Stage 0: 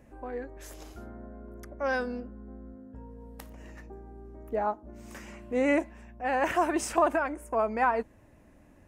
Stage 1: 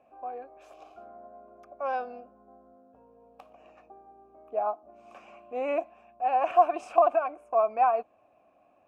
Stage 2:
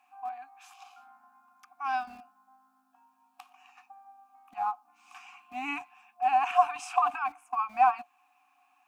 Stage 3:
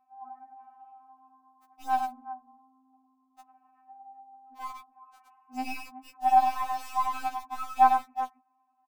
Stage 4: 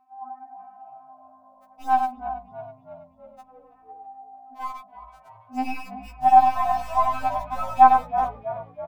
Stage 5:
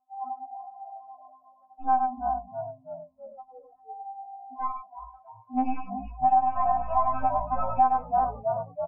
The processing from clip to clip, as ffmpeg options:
-filter_complex "[0:a]asplit=3[a][b][c];[a]bandpass=f=730:t=q:w=8,volume=0dB[d];[b]bandpass=f=1.09k:t=q:w=8,volume=-6dB[e];[c]bandpass=f=2.44k:t=q:w=8,volume=-9dB[f];[d][e][f]amix=inputs=3:normalize=0,volume=9dB"
-filter_complex "[0:a]afftfilt=real='re*(1-between(b*sr/4096,300,720))':imag='im*(1-between(b*sr/4096,300,720))':win_size=4096:overlap=0.75,highshelf=f=2.4k:g=12,acrossover=split=360[a][b];[a]aeval=exprs='val(0)*gte(abs(val(0)),0.00266)':c=same[c];[c][b]amix=inputs=2:normalize=0"
-filter_complex "[0:a]aecho=1:1:99|372:0.501|0.251,acrossover=split=1300[a][b];[b]acrusher=bits=4:dc=4:mix=0:aa=0.000001[c];[a][c]amix=inputs=2:normalize=0,afftfilt=real='re*3.46*eq(mod(b,12),0)':imag='im*3.46*eq(mod(b,12),0)':win_size=2048:overlap=0.75,volume=-1dB"
-filter_complex "[0:a]highshelf=f=2.6k:g=-8.5,acrossover=split=3400[a][b];[a]asplit=7[c][d][e][f][g][h][i];[d]adelay=326,afreqshift=-56,volume=-14dB[j];[e]adelay=652,afreqshift=-112,volume=-18.7dB[k];[f]adelay=978,afreqshift=-168,volume=-23.5dB[l];[g]adelay=1304,afreqshift=-224,volume=-28.2dB[m];[h]adelay=1630,afreqshift=-280,volume=-32.9dB[n];[i]adelay=1956,afreqshift=-336,volume=-37.7dB[o];[c][j][k][l][m][n][o]amix=inputs=7:normalize=0[p];[b]alimiter=level_in=25.5dB:limit=-24dB:level=0:latency=1:release=161,volume=-25.5dB[q];[p][q]amix=inputs=2:normalize=0,volume=7.5dB"
-af "afftdn=nr=20:nf=-40,lowpass=1.1k,acompressor=threshold=-24dB:ratio=4,volume=4dB"

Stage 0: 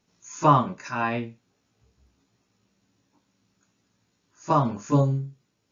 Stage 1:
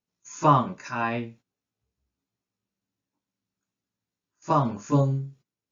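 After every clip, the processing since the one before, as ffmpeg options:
-af "agate=range=-17dB:threshold=-49dB:ratio=16:detection=peak,volume=-1dB"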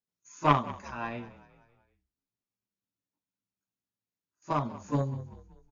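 -filter_complex "[0:a]aeval=exprs='0.531*(cos(1*acos(clip(val(0)/0.531,-1,1)))-cos(1*PI/2))+0.119*(cos(3*acos(clip(val(0)/0.531,-1,1)))-cos(3*PI/2))':c=same,asplit=5[a][b][c][d][e];[b]adelay=191,afreqshift=-39,volume=-17.5dB[f];[c]adelay=382,afreqshift=-78,volume=-23.5dB[g];[d]adelay=573,afreqshift=-117,volume=-29.5dB[h];[e]adelay=764,afreqshift=-156,volume=-35.6dB[i];[a][f][g][h][i]amix=inputs=5:normalize=0"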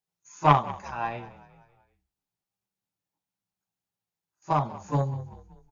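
-af "equalizer=f=160:t=o:w=0.33:g=6,equalizer=f=250:t=o:w=0.33:g=-10,equalizer=f=800:t=o:w=0.33:g=9,volume=2dB"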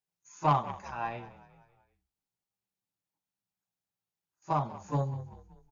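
-af "asoftclip=type=tanh:threshold=-11dB,volume=-4dB"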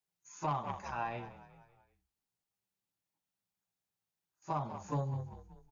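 -af "alimiter=level_in=1.5dB:limit=-24dB:level=0:latency=1:release=144,volume=-1.5dB"

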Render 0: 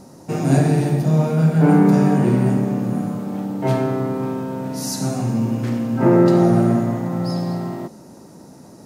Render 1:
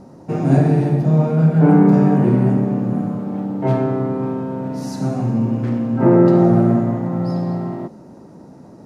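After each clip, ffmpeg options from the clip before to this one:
-af "lowpass=f=1.3k:p=1,volume=2dB"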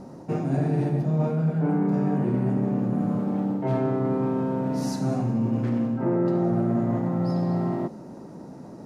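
-af "equalizer=f=88:w=3.9:g=-7,areverse,acompressor=threshold=-21dB:ratio=6,areverse"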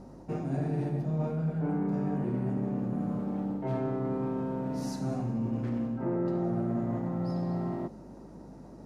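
-af "aeval=exprs='val(0)+0.00398*(sin(2*PI*50*n/s)+sin(2*PI*2*50*n/s)/2+sin(2*PI*3*50*n/s)/3+sin(2*PI*4*50*n/s)/4+sin(2*PI*5*50*n/s)/5)':c=same,volume=-7dB"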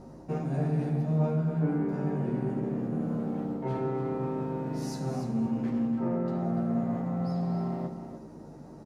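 -filter_complex "[0:a]asplit=2[a][b];[b]adelay=13,volume=-4.5dB[c];[a][c]amix=inputs=2:normalize=0,aecho=1:1:292:0.335"

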